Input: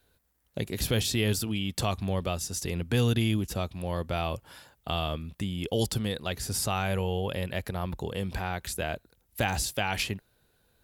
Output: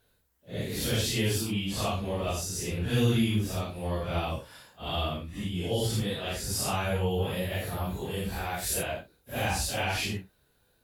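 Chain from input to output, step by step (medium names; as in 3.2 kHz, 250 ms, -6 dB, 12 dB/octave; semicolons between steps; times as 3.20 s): phase randomisation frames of 200 ms; 7.09–8.82 s: treble shelf 10 kHz -> 6.7 kHz +11.5 dB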